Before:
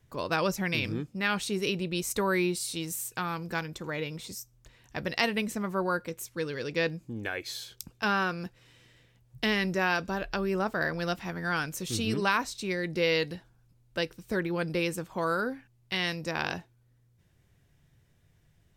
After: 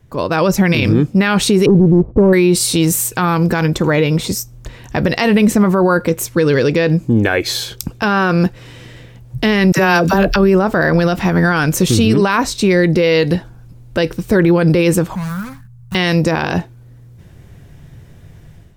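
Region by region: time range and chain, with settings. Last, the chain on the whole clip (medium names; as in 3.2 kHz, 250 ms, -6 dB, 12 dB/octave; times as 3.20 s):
1.66–2.33 s: Gaussian low-pass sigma 13 samples + waveshaping leveller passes 1
9.72–10.36 s: treble shelf 7.6 kHz +11 dB + phase dispersion lows, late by 55 ms, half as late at 570 Hz
15.15–15.95 s: median filter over 41 samples + FFT filter 190 Hz 0 dB, 300 Hz -29 dB, 430 Hz -30 dB, 1.1 kHz -3 dB, 2.8 kHz -7 dB, 9.3 kHz +6 dB + compression 2:1, threshold -49 dBFS
whole clip: tilt shelf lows +4 dB, about 1.2 kHz; level rider gain up to 10.5 dB; loudness maximiser +14 dB; trim -2.5 dB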